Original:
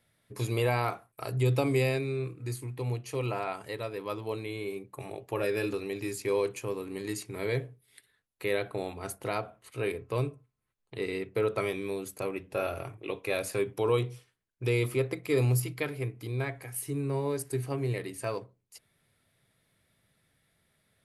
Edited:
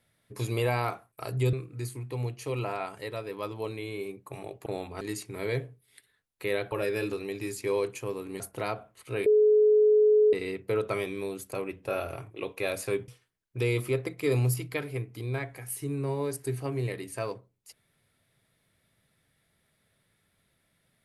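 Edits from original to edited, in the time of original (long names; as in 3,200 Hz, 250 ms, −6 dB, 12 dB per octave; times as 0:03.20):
0:01.53–0:02.20: remove
0:05.33–0:07.01: swap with 0:08.72–0:09.07
0:09.93–0:11.00: beep over 425 Hz −17 dBFS
0:13.75–0:14.14: remove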